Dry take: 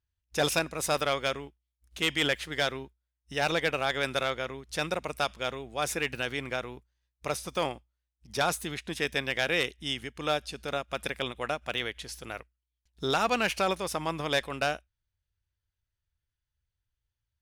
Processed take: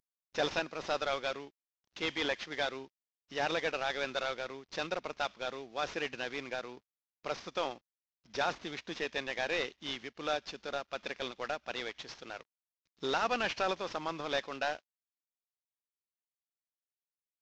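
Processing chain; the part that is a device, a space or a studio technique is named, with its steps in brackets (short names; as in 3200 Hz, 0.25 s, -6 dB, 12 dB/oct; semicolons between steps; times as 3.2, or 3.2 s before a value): early wireless headset (HPF 220 Hz 12 dB/oct; CVSD 32 kbps); gain -3.5 dB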